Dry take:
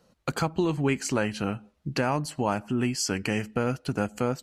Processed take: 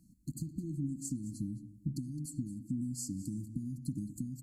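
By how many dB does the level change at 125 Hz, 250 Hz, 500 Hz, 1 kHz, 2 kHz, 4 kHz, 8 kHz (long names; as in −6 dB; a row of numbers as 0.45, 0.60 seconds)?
−7.5 dB, −9.0 dB, below −25 dB, below −40 dB, below −40 dB, −22.0 dB, −9.5 dB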